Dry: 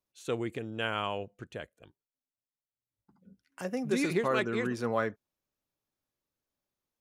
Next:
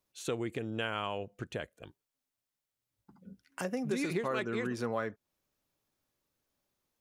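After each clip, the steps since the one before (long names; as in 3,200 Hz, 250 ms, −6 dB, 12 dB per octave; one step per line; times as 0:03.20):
downward compressor 2.5 to 1, threshold −41 dBFS, peak gain reduction 11.5 dB
level +6 dB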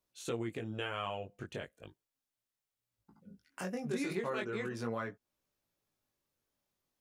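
chorus effect 0.38 Hz, delay 16.5 ms, depth 5 ms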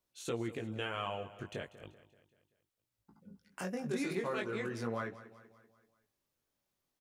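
repeating echo 192 ms, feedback 51%, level −16 dB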